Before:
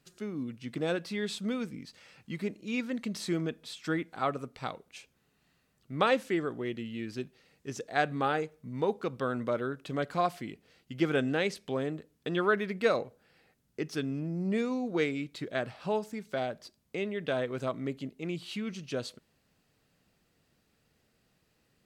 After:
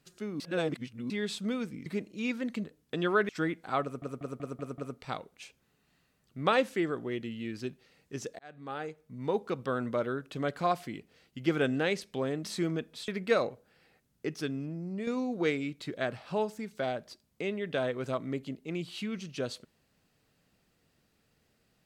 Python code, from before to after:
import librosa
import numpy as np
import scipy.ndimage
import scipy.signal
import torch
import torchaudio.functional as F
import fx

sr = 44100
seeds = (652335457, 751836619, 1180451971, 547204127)

y = fx.edit(x, sr, fx.reverse_span(start_s=0.4, length_s=0.7),
    fx.cut(start_s=1.86, length_s=0.49),
    fx.swap(start_s=3.13, length_s=0.65, other_s=11.97, other_length_s=0.65),
    fx.stutter(start_s=4.32, slice_s=0.19, count=6),
    fx.fade_in_span(start_s=7.93, length_s=1.04),
    fx.fade_out_to(start_s=13.86, length_s=0.75, floor_db=-8.0), tone=tone)